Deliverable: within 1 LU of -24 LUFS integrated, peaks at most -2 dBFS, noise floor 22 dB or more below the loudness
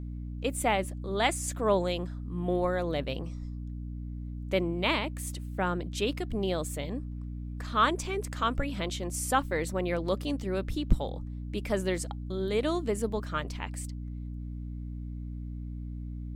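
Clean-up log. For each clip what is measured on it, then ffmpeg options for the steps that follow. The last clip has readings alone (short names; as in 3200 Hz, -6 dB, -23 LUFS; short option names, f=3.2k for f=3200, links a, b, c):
hum 60 Hz; harmonics up to 300 Hz; hum level -35 dBFS; loudness -32.0 LUFS; peak -11.0 dBFS; loudness target -24.0 LUFS
-> -af "bandreject=f=60:t=h:w=6,bandreject=f=120:t=h:w=6,bandreject=f=180:t=h:w=6,bandreject=f=240:t=h:w=6,bandreject=f=300:t=h:w=6"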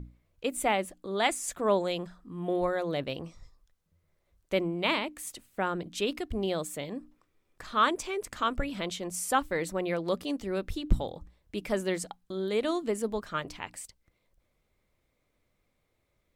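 hum none; loudness -31.5 LUFS; peak -11.5 dBFS; loudness target -24.0 LUFS
-> -af "volume=7.5dB"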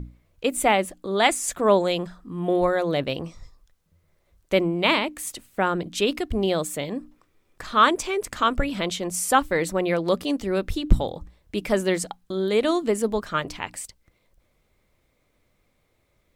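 loudness -24.0 LUFS; peak -4.0 dBFS; noise floor -69 dBFS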